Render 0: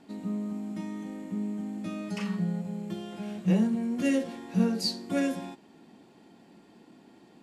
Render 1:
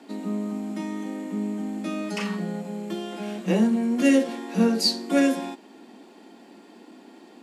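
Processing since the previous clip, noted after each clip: steep high-pass 220 Hz 36 dB/octave; trim +8 dB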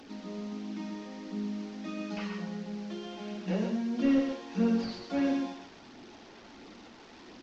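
one-bit delta coder 32 kbps, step -36.5 dBFS; flange 1.5 Hz, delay 0.2 ms, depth 2 ms, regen -37%; loudspeakers at several distances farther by 15 m -11 dB, 45 m -6 dB; trim -5.5 dB

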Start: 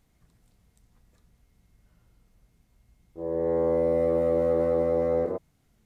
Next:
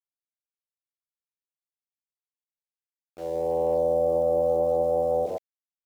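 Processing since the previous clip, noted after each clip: FFT filter 160 Hz 0 dB, 220 Hz -4 dB, 400 Hz -2 dB, 740 Hz +13 dB, 1.9 kHz -29 dB; small samples zeroed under -40 dBFS; trim -4 dB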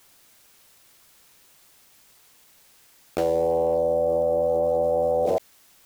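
level flattener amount 100%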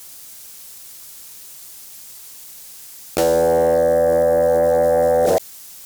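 tone controls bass +2 dB, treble +11 dB; sine folder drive 3 dB, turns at -10.5 dBFS; trim +1 dB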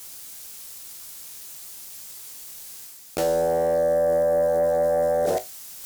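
reverse; upward compressor, threshold -25 dBFS; reverse; feedback comb 53 Hz, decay 0.19 s, harmonics all, mix 80%; trim -3 dB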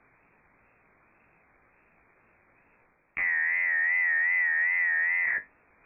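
frequency inversion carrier 2.5 kHz; wow and flutter 83 cents; trim -5 dB

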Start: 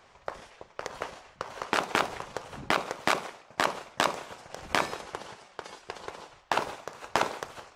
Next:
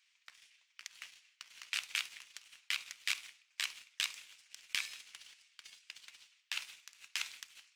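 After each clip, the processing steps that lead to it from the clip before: Chebyshev high-pass 2.4 kHz, order 3; waveshaping leveller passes 1; trim -5.5 dB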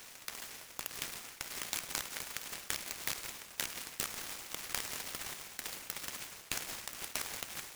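spectral levelling over time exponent 0.6; compression 4:1, threshold -38 dBFS, peak gain reduction 10 dB; delay time shaken by noise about 3.7 kHz, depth 0.1 ms; trim +4 dB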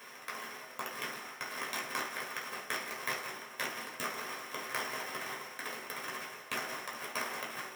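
reverberation RT60 0.45 s, pre-delay 3 ms, DRR -4 dB; trim -7 dB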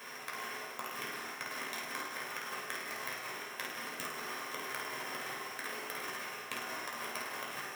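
compression, threshold -41 dBFS, peak gain reduction 10 dB; on a send: flutter echo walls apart 8.8 m, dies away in 0.59 s; on the sum: trim +2.5 dB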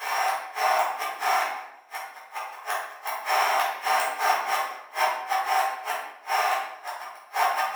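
inverted gate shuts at -30 dBFS, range -41 dB; resonant high-pass 770 Hz, resonance Q 4.9; simulated room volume 280 m³, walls mixed, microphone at 3.9 m; trim +6 dB

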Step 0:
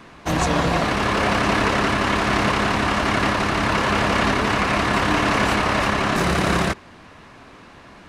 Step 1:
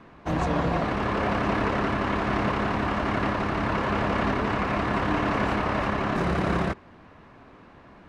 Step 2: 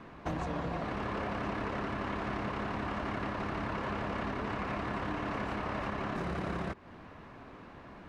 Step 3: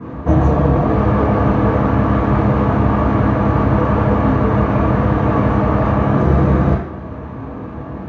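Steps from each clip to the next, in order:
low-pass 1.3 kHz 6 dB/octave; trim -4 dB
compression 6:1, threshold -33 dBFS, peak gain reduction 12 dB
reverberation RT60 0.70 s, pre-delay 3 ms, DRR -12.5 dB; trim -7.5 dB

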